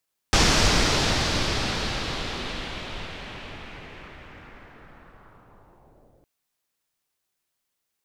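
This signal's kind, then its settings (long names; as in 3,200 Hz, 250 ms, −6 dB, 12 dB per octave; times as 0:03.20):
filter sweep on noise pink, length 5.91 s lowpass, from 5,700 Hz, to 480 Hz, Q 1.7, linear, gain ramp −39.5 dB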